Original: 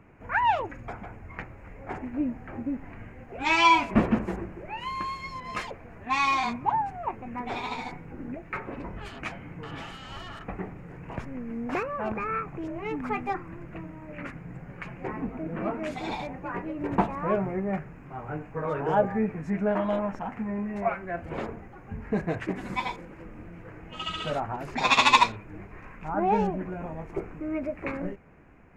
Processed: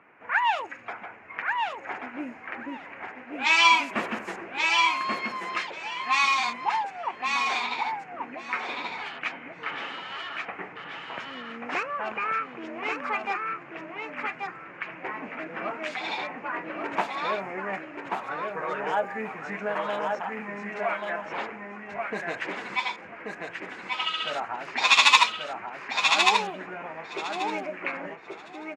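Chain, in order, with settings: level-controlled noise filter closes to 1.9 kHz, open at -21 dBFS; high-pass 240 Hz 12 dB/octave; tilt shelf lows -9.5 dB, about 800 Hz; in parallel at +1 dB: compression, threshold -33 dBFS, peak gain reduction 23 dB; on the sum: harmony voices +3 st -18 dB; on a send: feedback delay 1134 ms, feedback 17%, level -4 dB; on the sum: trim -4.5 dB

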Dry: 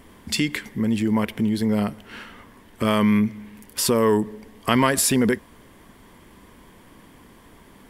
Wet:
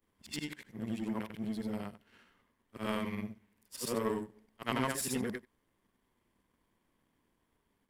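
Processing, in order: short-time spectra conjugated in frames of 196 ms; power-law waveshaper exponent 1.4; endings held to a fixed fall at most 580 dB/s; trim -7.5 dB

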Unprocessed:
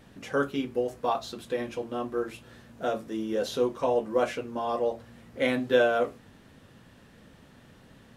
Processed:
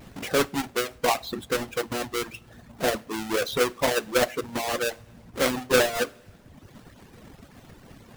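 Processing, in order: square wave that keeps the level; reverb removal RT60 0.98 s; in parallel at +0.5 dB: compression, threshold -32 dBFS, peak gain reduction 16.5 dB; on the sum: two-slope reverb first 0.4 s, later 2.3 s, from -18 dB, DRR 15 dB; harmonic-percussive split harmonic -8 dB

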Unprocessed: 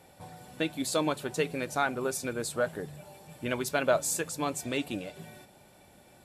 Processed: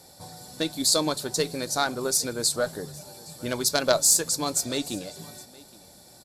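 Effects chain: Chebyshev shaper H 2 -12 dB, 3 -23 dB, 4 -19 dB, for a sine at -11 dBFS; resonant high shelf 3.5 kHz +8 dB, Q 3; delay 816 ms -23 dB; trim +4.5 dB

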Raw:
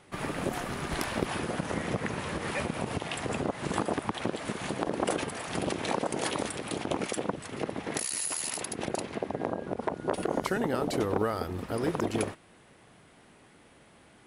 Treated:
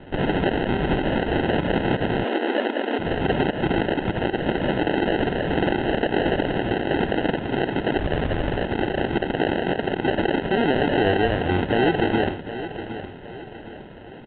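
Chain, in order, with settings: dynamic bell 370 Hz, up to +6 dB, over -44 dBFS, Q 1.7; in parallel at -1 dB: compression, threshold -37 dBFS, peak gain reduction 16.5 dB; on the sum: peak limiter -20.5 dBFS, peak gain reduction 11.5 dB; sample-and-hold 38×; on a send: feedback delay 764 ms, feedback 41%, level -12 dB; on the sum: resampled via 8 kHz; 2.24–2.99 s: brick-wall FIR high-pass 220 Hz; trim +9 dB

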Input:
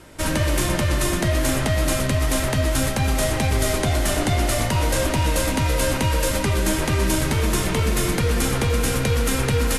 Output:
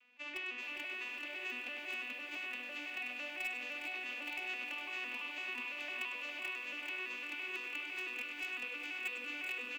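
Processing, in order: vocoder on a broken chord minor triad, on B3, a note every 168 ms; band-pass filter 2.6 kHz, Q 8.6; in parallel at -12 dB: bit crusher 6-bit; on the sum: speakerphone echo 100 ms, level -6 dB; on a send at -19 dB: reverberation RT60 2.2 s, pre-delay 53 ms; on the sum: bit-crushed delay 408 ms, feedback 55%, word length 11-bit, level -8 dB; trim +3 dB

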